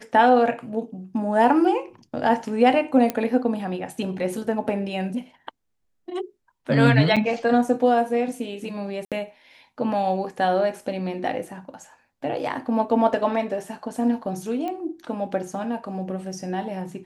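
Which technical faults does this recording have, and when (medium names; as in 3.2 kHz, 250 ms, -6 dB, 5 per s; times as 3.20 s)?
3.10 s: pop -10 dBFS
7.16–7.17 s: dropout 6.3 ms
9.05–9.12 s: dropout 67 ms
14.68 s: pop -19 dBFS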